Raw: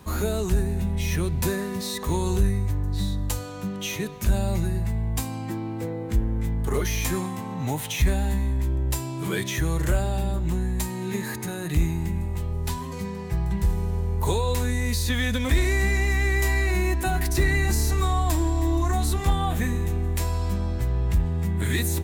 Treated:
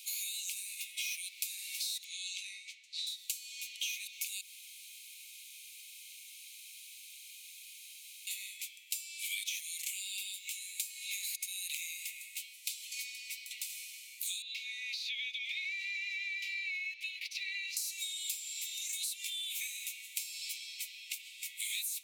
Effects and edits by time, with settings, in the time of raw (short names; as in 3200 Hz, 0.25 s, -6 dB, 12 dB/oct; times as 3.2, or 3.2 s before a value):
2.04–3.07 air absorption 110 m
4.41–8.27 room tone
14.42–17.77 air absorption 280 m
whole clip: Chebyshev high-pass 2200 Hz, order 8; compressor 6:1, threshold -44 dBFS; gain +8 dB